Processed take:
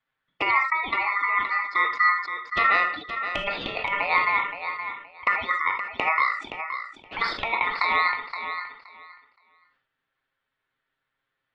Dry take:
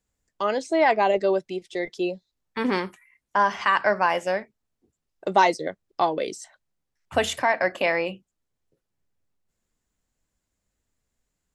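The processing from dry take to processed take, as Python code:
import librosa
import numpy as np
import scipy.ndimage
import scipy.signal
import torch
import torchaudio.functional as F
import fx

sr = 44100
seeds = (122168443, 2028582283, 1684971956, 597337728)

p1 = fx.highpass(x, sr, hz=130.0, slope=6)
p2 = fx.spec_gate(p1, sr, threshold_db=-30, keep='strong')
p3 = scipy.signal.sosfilt(scipy.signal.butter(4, 2400.0, 'lowpass', fs=sr, output='sos'), p2)
p4 = fx.over_compress(p3, sr, threshold_db=-24.0, ratio=-0.5)
p5 = fx.env_flanger(p4, sr, rest_ms=7.5, full_db=-25.5)
p6 = p5 * np.sin(2.0 * np.pi * 1600.0 * np.arange(len(p5)) / sr)
p7 = p6 + fx.echo_feedback(p6, sr, ms=521, feedback_pct=18, wet_db=-9.5, dry=0)
p8 = fx.rev_gated(p7, sr, seeds[0], gate_ms=100, shape='flat', drr_db=7.0)
p9 = fx.sustainer(p8, sr, db_per_s=91.0)
y = p9 * 10.0 ** (6.0 / 20.0)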